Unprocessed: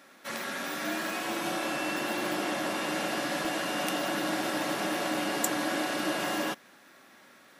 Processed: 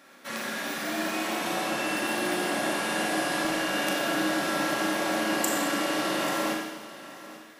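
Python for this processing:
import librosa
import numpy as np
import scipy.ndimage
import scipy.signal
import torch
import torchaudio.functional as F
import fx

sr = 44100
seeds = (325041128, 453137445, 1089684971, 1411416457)

y = fx.peak_eq(x, sr, hz=9400.0, db=7.0, octaves=0.26, at=(1.86, 3.38))
y = y + 10.0 ** (-16.5 / 20.0) * np.pad(y, (int(840 * sr / 1000.0), 0))[:len(y)]
y = fx.rev_schroeder(y, sr, rt60_s=1.2, comb_ms=28, drr_db=0.0)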